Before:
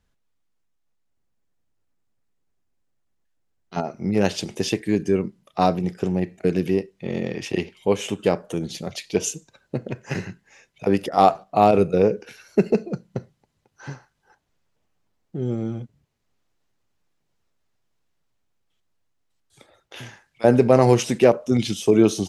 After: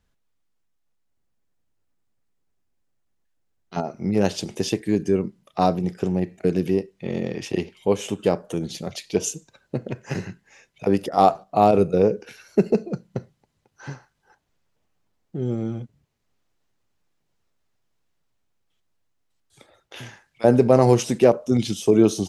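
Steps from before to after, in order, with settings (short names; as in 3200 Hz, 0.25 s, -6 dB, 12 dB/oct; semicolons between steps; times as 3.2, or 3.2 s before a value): dynamic EQ 2200 Hz, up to -5 dB, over -39 dBFS, Q 1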